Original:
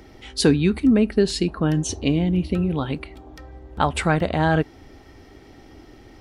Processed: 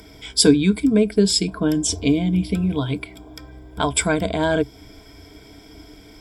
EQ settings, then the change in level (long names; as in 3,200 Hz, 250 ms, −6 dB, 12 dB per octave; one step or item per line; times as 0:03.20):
EQ curve with evenly spaced ripples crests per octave 1.7, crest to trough 14 dB
dynamic equaliser 1,600 Hz, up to −5 dB, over −34 dBFS, Q 0.81
high-shelf EQ 4,000 Hz +12 dB
−1.0 dB